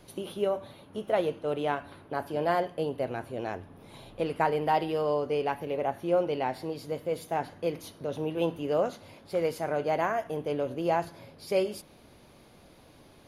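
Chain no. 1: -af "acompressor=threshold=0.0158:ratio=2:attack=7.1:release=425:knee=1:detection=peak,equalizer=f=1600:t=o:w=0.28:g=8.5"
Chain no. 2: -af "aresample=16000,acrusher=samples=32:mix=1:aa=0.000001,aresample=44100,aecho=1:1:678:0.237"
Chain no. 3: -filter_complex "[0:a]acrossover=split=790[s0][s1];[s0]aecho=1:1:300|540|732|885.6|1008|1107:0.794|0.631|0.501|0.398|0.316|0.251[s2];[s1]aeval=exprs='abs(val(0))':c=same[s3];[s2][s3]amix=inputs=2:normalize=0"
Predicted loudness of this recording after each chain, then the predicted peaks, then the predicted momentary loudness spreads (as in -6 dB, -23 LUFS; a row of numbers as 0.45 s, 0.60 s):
-37.5 LUFS, -32.5 LUFS, -29.0 LUFS; -19.0 dBFS, -12.5 dBFS, -12.5 dBFS; 14 LU, 13 LU, 6 LU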